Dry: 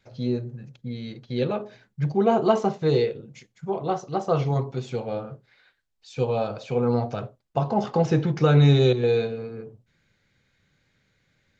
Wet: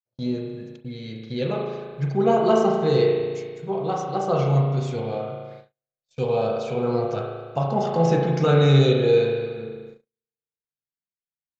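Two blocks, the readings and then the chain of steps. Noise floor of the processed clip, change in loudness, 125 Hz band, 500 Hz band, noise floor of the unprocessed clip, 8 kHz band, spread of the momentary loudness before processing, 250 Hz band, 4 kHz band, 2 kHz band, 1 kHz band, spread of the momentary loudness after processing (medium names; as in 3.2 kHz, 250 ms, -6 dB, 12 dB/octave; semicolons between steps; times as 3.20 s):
under -85 dBFS, +2.0 dB, +1.0 dB, +3.0 dB, -72 dBFS, no reading, 17 LU, +0.5 dB, +2.5 dB, +2.5 dB, +2.0 dB, 18 LU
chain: treble shelf 6 kHz +9.5 dB; spring tank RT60 1.6 s, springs 36 ms, chirp 70 ms, DRR 0 dB; gate -39 dBFS, range -43 dB; trim -1.5 dB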